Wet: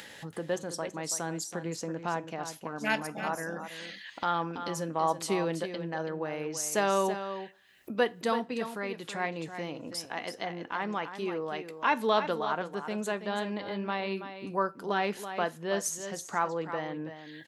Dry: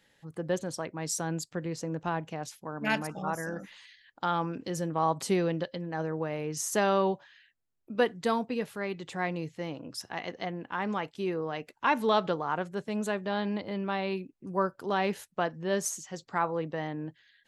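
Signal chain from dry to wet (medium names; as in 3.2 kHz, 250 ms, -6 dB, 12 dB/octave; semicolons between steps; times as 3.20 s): high-pass 42 Hz; bass shelf 200 Hz -9 dB; upward compressor, threshold -32 dBFS; on a send: delay 329 ms -10 dB; on the sum: two-slope reverb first 0.25 s, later 1.6 s, from -27 dB, DRR 14.5 dB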